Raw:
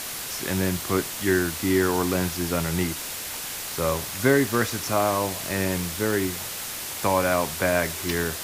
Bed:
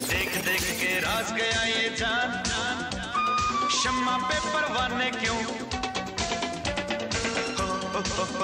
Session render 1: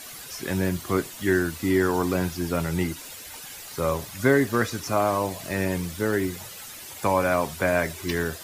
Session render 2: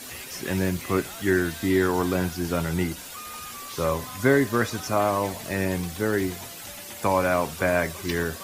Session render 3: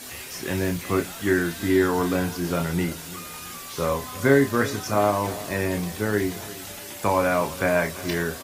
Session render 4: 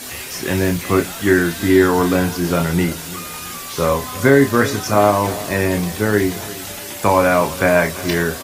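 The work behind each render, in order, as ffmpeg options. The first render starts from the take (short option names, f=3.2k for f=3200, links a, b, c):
-af "afftdn=nr=11:nf=-34"
-filter_complex "[1:a]volume=-16dB[a];[0:a][a]amix=inputs=2:normalize=0"
-filter_complex "[0:a]asplit=2[a][b];[b]adelay=29,volume=-7dB[c];[a][c]amix=inputs=2:normalize=0,aecho=1:1:345|690|1035|1380:0.133|0.06|0.027|0.0122"
-af "volume=7.5dB,alimiter=limit=-1dB:level=0:latency=1"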